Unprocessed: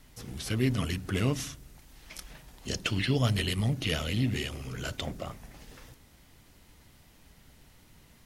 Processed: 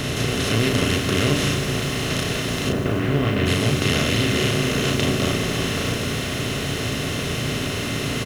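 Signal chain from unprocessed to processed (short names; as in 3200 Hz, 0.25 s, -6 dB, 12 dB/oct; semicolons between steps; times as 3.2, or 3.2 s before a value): per-bin compression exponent 0.2; 2.68–3.45 LPF 1200 Hz -> 2500 Hz 12 dB/oct; doubler 35 ms -3.5 dB; lo-fi delay 0.148 s, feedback 80%, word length 6-bit, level -12.5 dB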